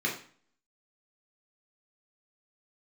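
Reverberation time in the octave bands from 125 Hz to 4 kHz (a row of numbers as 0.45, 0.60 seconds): 0.50, 0.55, 0.45, 0.45, 0.45, 0.40 seconds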